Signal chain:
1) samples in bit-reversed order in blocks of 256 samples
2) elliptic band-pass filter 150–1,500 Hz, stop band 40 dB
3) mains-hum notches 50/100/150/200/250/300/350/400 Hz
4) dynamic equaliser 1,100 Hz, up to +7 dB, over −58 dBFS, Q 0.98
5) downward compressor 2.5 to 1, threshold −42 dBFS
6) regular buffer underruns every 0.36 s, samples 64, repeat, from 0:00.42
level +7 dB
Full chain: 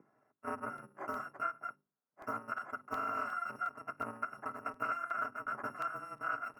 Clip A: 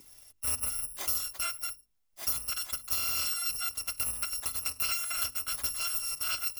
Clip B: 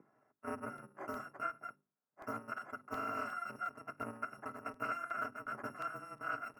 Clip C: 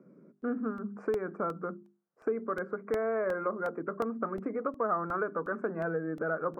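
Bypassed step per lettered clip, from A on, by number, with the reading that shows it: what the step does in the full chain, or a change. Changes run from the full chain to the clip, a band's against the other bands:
2, 125 Hz band +13.5 dB
4, change in integrated loudness −3.0 LU
1, 1 kHz band −13.0 dB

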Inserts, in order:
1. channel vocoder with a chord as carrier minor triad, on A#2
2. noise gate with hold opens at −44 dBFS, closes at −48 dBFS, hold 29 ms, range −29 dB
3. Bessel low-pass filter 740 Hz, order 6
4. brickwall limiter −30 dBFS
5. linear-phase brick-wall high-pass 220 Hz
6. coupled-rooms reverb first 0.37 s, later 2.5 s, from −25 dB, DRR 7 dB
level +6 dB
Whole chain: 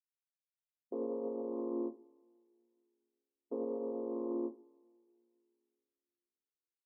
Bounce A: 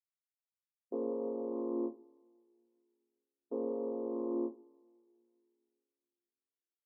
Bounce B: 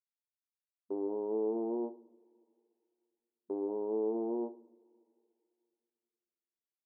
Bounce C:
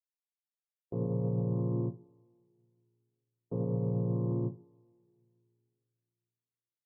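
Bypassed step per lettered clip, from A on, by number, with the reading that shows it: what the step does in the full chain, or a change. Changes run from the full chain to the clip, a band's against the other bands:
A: 4, change in integrated loudness +1.5 LU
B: 1, change in crest factor −2.0 dB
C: 5, change in crest factor −2.0 dB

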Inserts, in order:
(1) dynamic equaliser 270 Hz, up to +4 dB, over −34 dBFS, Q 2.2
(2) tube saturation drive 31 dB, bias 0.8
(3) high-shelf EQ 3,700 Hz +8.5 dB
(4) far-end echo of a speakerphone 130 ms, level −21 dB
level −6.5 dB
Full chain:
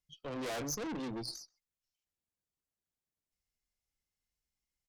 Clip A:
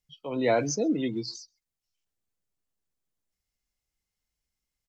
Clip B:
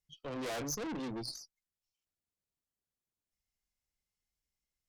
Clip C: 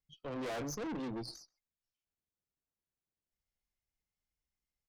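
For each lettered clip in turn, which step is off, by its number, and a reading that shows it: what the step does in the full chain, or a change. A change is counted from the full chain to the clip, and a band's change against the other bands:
2, change in crest factor +3.5 dB
4, echo-to-direct ratio −25.5 dB to none audible
3, 8 kHz band −6.0 dB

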